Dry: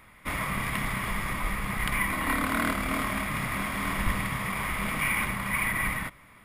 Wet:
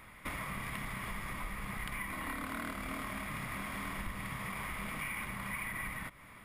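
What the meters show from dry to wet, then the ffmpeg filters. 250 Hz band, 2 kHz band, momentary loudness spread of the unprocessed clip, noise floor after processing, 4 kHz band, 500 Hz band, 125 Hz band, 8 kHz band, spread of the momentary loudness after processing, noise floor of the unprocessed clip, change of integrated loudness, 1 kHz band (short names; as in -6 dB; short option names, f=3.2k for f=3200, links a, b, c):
-11.0 dB, -11.0 dB, 5 LU, -55 dBFS, -10.5 dB, -11.0 dB, -10.5 dB, -11.0 dB, 3 LU, -54 dBFS, -11.0 dB, -10.5 dB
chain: -af "acompressor=threshold=-39dB:ratio=4"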